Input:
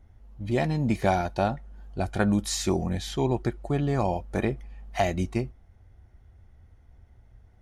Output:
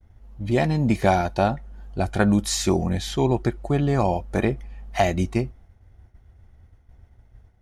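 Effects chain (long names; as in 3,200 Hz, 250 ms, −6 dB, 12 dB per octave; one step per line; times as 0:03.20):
downward expander −49 dBFS
level +4.5 dB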